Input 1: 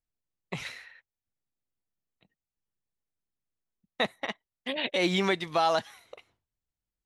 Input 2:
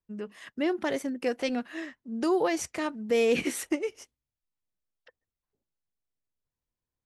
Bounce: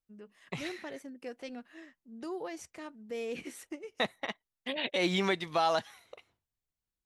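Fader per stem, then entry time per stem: -3.0 dB, -13.5 dB; 0.00 s, 0.00 s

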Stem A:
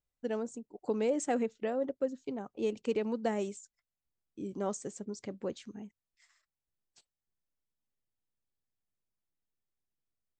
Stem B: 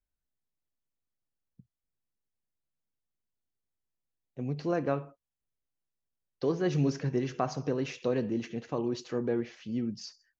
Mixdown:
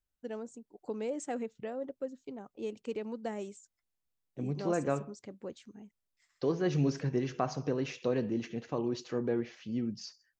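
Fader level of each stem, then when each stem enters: -5.5 dB, -1.5 dB; 0.00 s, 0.00 s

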